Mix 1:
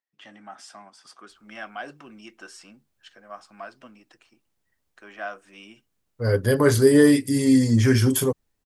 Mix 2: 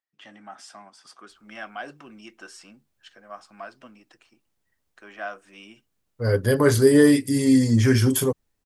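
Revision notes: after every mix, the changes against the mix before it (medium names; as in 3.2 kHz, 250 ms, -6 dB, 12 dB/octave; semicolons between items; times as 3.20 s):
no change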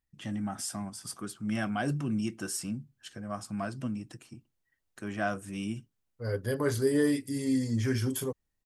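first voice: remove band-pass 570–4100 Hz; second voice -11.0 dB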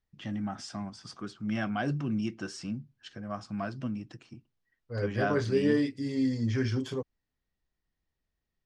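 second voice: entry -1.30 s; master: add low-pass 5.5 kHz 24 dB/octave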